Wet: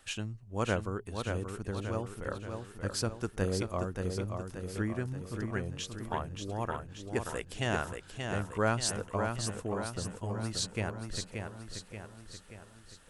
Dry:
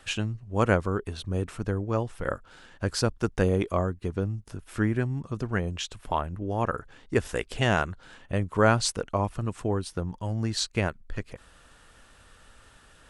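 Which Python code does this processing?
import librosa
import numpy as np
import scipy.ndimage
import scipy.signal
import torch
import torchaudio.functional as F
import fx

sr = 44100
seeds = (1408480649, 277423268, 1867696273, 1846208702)

p1 = fx.high_shelf(x, sr, hz=7200.0, db=10.0)
p2 = p1 + fx.echo_feedback(p1, sr, ms=580, feedback_pct=53, wet_db=-5.5, dry=0)
y = F.gain(torch.from_numpy(p2), -8.5).numpy()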